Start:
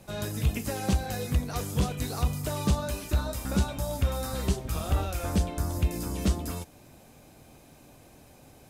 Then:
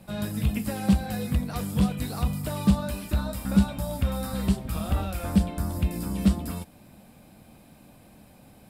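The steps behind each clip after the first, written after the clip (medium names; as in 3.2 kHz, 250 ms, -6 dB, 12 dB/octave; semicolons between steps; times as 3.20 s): graphic EQ with 31 bands 200 Hz +11 dB, 400 Hz -5 dB, 6.3 kHz -11 dB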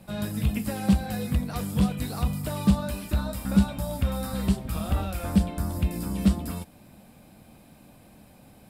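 no audible change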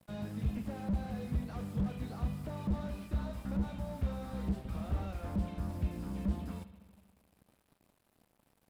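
crossover distortion -49.5 dBFS; bucket-brigade echo 79 ms, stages 2048, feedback 72%, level -18 dB; slew-rate limiter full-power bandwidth 16 Hz; trim -8 dB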